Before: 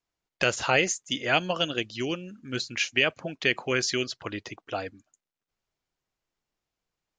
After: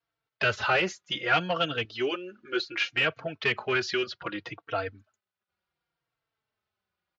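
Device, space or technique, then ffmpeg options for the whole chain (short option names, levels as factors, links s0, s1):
barber-pole flanger into a guitar amplifier: -filter_complex "[0:a]asplit=2[s0][s1];[s1]adelay=3.9,afreqshift=-0.66[s2];[s0][s2]amix=inputs=2:normalize=1,asoftclip=type=tanh:threshold=0.075,highpass=77,equalizer=f=98:t=q:w=4:g=4,equalizer=f=260:t=q:w=4:g=-9,equalizer=f=1400:t=q:w=4:g=7,lowpass=f=4400:w=0.5412,lowpass=f=4400:w=1.3066,asettb=1/sr,asplit=3[s3][s4][s5];[s3]atrim=end=1.854[s6];[s4]atrim=start=1.85:end=2.83,asetpts=PTS-STARTPTS,afade=t=in:d=0.004:c=qsin,afade=t=out:st=0.976:d=0.004:c=qsin,lowshelf=f=240:t=q:w=3:g=-8[s7];[s5]atrim=start=2.826[s8];[s6][s7]acrossfade=d=0.004:c1=hsin:c2=qsin[s9];[s9][s8]acrossfade=d=0.004:c1=qsin:c2=hsin,volume=1.58"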